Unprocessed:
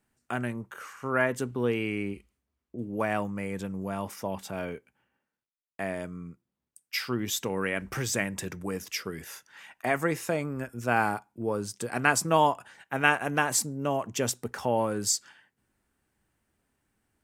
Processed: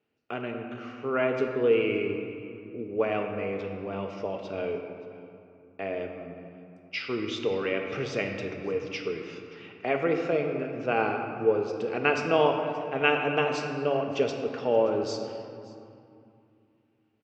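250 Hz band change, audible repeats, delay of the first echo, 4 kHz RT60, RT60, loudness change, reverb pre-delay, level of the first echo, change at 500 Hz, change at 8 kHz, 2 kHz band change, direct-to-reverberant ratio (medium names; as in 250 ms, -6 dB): 0.0 dB, 1, 576 ms, 1.6 s, 2.6 s, +1.0 dB, 5 ms, -21.5 dB, +5.5 dB, under -15 dB, -2.0 dB, 3.0 dB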